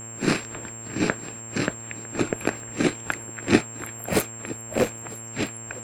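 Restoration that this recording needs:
hum removal 113.4 Hz, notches 27
notch filter 7,500 Hz, Q 30
repair the gap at 0:02.60/0:03.85/0:04.98, 1.3 ms
echo removal 953 ms −21.5 dB

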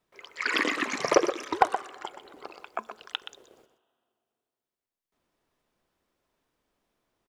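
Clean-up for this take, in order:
clipped peaks rebuilt −7 dBFS
echo removal 124 ms −10 dB

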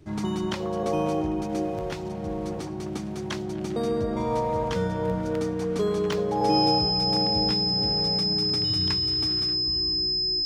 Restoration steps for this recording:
notch filter 5,100 Hz, Q 30
repair the gap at 0:06.13, 2.2 ms

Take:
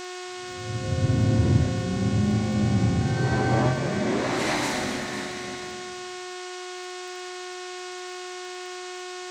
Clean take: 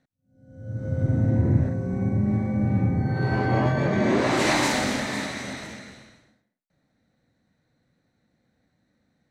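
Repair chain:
click removal
hum removal 363.5 Hz, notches 23
noise reduction from a noise print 30 dB
level 0 dB, from 0:03.73 +4 dB

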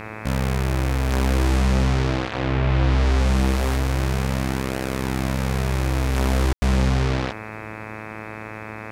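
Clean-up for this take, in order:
hum removal 108.5 Hz, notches 24
ambience match 0:06.53–0:06.62

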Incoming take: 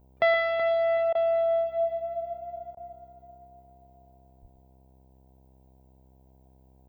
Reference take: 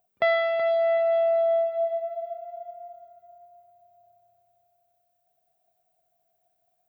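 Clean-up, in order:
hum removal 65.2 Hz, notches 15
0:04.41–0:04.53: high-pass filter 140 Hz 24 dB per octave
repair the gap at 0:01.13/0:02.75, 19 ms
echo removal 118 ms −13 dB

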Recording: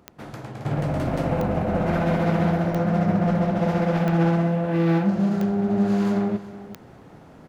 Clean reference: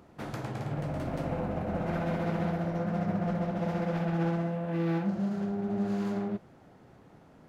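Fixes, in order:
click removal
echo removal 374 ms −16 dB
level 0 dB, from 0:00.65 −9 dB

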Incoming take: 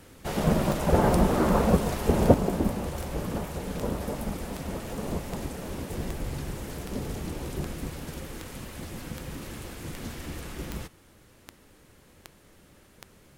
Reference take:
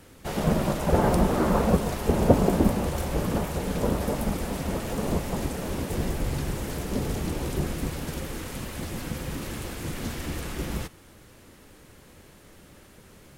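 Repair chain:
click removal
level correction +5 dB, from 0:02.34

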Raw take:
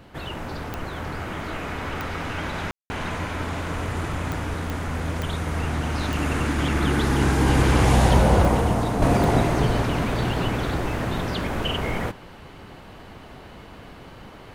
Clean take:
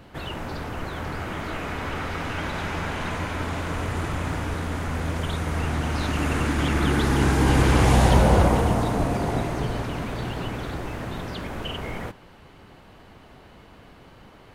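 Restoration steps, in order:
click removal
ambience match 0:02.71–0:02.90
level 0 dB, from 0:09.02 −6 dB

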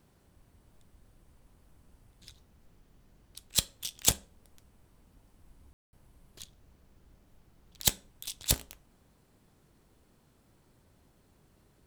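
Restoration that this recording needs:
ambience match 0:05.73–0:05.93

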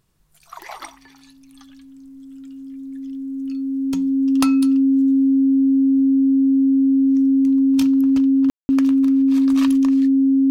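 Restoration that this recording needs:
notch filter 270 Hz, Q 30
ambience match 0:08.50–0:08.69

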